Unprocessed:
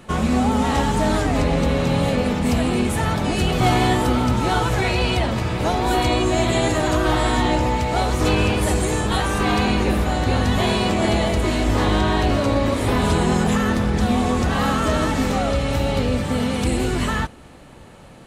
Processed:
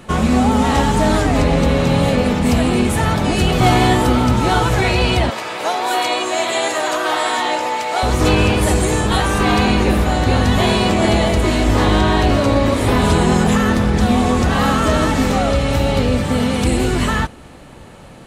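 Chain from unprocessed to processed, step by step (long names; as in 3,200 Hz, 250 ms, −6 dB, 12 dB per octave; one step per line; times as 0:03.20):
0:05.30–0:08.03: high-pass filter 570 Hz 12 dB per octave
level +4.5 dB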